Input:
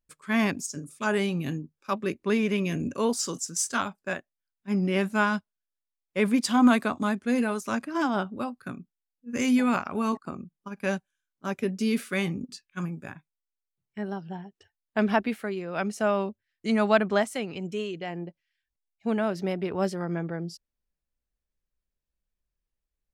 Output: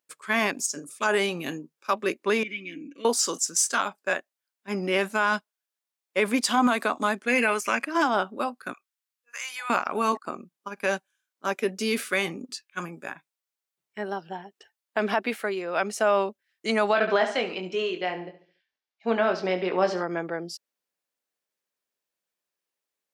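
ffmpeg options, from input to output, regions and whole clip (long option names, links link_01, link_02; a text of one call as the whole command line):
ffmpeg -i in.wav -filter_complex "[0:a]asettb=1/sr,asplit=3[link_01][link_02][link_03];[link_01]atrim=end=2.434[link_04];[link_02]atrim=start=2.43:end=3.05,asetpts=PTS-STARTPTS,afade=type=in:duration=0.004:curve=qsin,afade=type=out:start_time=0.616:duration=0.004:curve=qsin,asplit=3[link_05][link_06][link_07];[link_05]bandpass=frequency=270:width_type=q:width=8,volume=0dB[link_08];[link_06]bandpass=frequency=2290:width_type=q:width=8,volume=-6dB[link_09];[link_07]bandpass=frequency=3010:width_type=q:width=8,volume=-9dB[link_10];[link_08][link_09][link_10]amix=inputs=3:normalize=0,aecho=1:1:6.1:0.65,atrim=end_sample=27342[link_11];[link_03]atrim=start=3.046[link_12];[link_04][link_11]acrossfade=duration=0.004:curve1=hsin:curve2=qsin[link_13];[link_13][link_12]acrossfade=duration=0.004:curve1=qsin:curve2=hsin,asettb=1/sr,asplit=3[link_14][link_15][link_16];[link_14]atrim=end=7.284[link_17];[link_15]atrim=start=7.28:end=7.85,asetpts=PTS-STARTPTS,afade=type=in:duration=0.004:curve=qsin,afade=type=out:start_time=0.566:duration=0.004:curve=qsin,equalizer=frequency=2300:width=1.8:gain=12.5,bandreject=frequency=3800:width=5.1[link_18];[link_16]atrim=start=7.846[link_19];[link_17][link_18]acrossfade=duration=0.004:curve1=hsin:curve2=qsin[link_20];[link_20][link_19]acrossfade=duration=0.004:curve1=qsin:curve2=hsin,asettb=1/sr,asplit=3[link_21][link_22][link_23];[link_21]atrim=end=8.734[link_24];[link_22]atrim=start=8.73:end=9.7,asetpts=PTS-STARTPTS,afade=type=in:duration=0.004:curve=qsin,afade=type=out:start_time=0.966:duration=0.004:curve=qsin,highpass=frequency=960:width=0.5412,highpass=frequency=960:width=1.3066,acompressor=threshold=-43dB:ratio=2:attack=3.2:release=140:knee=1:detection=peak[link_25];[link_23]atrim=start=9.696[link_26];[link_24][link_25]acrossfade=duration=0.004:curve1=hsin:curve2=qsin[link_27];[link_27][link_26]acrossfade=duration=0.004:curve1=qsin:curve2=hsin,asettb=1/sr,asplit=3[link_28][link_29][link_30];[link_28]atrim=end=16.934[link_31];[link_29]atrim=start=16.93:end=20.03,asetpts=PTS-STARTPTS,afade=type=in:duration=0.004:curve=qsin,afade=type=out:start_time=3.096:duration=0.004:curve=qsin,lowpass=frequency=5400:width=0.5412,lowpass=frequency=5400:width=1.3066,asplit=2[link_32][link_33];[link_33]adelay=22,volume=-6.5dB[link_34];[link_32][link_34]amix=inputs=2:normalize=0,atrim=end_sample=136710,aecho=1:1:71|142|213|284:0.224|0.0873|0.0341|0.0133,atrim=end_sample=136710[link_35];[link_30]atrim=start=20.026[link_36];[link_31][link_35]acrossfade=duration=0.004:curve1=hsin:curve2=qsin[link_37];[link_37][link_36]acrossfade=duration=0.004:curve1=qsin:curve2=hsin,highpass=410,alimiter=limit=-18.5dB:level=0:latency=1:release=66,volume=6.5dB" out.wav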